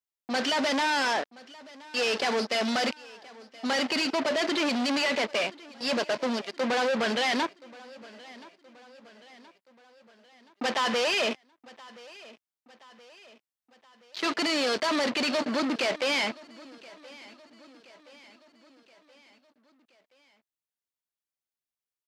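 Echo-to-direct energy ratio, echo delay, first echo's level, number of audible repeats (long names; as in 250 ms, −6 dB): −20.0 dB, 1,024 ms, −21.5 dB, 3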